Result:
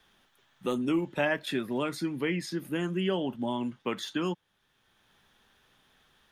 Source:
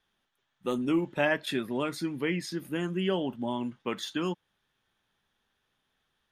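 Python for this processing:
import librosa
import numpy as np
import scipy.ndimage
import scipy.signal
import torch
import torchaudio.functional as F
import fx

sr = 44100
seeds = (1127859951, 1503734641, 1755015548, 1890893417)

y = fx.dmg_crackle(x, sr, seeds[0], per_s=fx.line((1.24, 130.0), (1.78, 600.0)), level_db=-55.0, at=(1.24, 1.78), fade=0.02)
y = fx.band_squash(y, sr, depth_pct=40)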